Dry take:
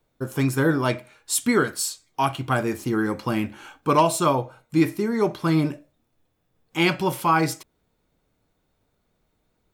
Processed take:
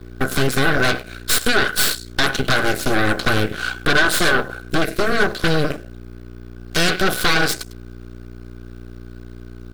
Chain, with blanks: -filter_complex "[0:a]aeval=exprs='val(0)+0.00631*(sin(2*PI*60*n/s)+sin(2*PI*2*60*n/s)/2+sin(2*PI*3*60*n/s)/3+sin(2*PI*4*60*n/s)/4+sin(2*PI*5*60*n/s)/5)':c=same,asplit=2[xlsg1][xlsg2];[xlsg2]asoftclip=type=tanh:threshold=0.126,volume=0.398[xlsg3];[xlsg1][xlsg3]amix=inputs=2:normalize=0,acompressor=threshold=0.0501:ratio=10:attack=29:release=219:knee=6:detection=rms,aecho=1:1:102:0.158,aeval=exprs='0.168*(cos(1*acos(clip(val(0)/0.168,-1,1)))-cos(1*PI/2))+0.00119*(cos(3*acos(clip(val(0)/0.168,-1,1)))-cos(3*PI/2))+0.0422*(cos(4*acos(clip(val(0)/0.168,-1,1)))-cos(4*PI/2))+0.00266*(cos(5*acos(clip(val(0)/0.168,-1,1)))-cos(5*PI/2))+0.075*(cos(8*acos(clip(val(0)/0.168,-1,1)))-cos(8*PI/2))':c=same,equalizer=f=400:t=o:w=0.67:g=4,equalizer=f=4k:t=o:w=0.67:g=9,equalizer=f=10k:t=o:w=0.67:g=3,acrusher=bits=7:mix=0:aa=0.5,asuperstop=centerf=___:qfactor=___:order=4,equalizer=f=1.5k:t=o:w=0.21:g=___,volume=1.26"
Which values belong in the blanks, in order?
910, 6, 15